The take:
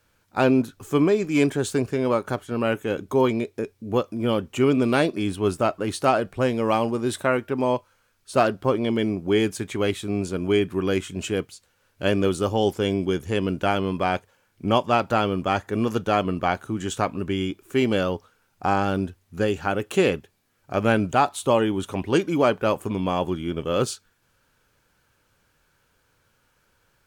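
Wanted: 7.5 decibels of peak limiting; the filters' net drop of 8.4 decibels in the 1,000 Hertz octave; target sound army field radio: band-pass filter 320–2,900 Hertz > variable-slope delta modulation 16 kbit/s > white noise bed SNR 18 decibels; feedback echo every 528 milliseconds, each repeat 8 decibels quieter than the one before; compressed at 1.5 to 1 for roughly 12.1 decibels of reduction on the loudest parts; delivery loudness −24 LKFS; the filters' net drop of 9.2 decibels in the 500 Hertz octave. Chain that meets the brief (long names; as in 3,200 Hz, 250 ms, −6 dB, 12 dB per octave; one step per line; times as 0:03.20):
parametric band 500 Hz −8.5 dB
parametric band 1,000 Hz −8.5 dB
downward compressor 1.5 to 1, threshold −54 dBFS
brickwall limiter −30.5 dBFS
band-pass filter 320–2,900 Hz
repeating echo 528 ms, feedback 40%, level −8 dB
variable-slope delta modulation 16 kbit/s
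white noise bed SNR 18 dB
level +21.5 dB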